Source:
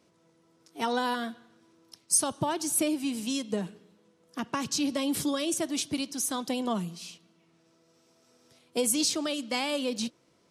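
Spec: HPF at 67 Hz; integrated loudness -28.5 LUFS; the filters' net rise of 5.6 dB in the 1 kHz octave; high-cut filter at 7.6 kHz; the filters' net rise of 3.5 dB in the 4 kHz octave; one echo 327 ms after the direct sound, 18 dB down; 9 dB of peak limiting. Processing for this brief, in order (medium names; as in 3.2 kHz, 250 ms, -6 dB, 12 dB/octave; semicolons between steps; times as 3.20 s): high-pass 67 Hz; low-pass 7.6 kHz; peaking EQ 1 kHz +6.5 dB; peaking EQ 4 kHz +4.5 dB; peak limiter -20 dBFS; delay 327 ms -18 dB; trim +2 dB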